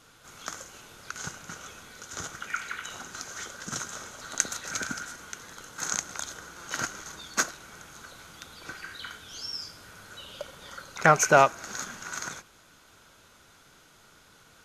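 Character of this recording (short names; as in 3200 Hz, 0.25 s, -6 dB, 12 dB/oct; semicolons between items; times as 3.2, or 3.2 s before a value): noise floor -57 dBFS; spectral tilt -2.0 dB/oct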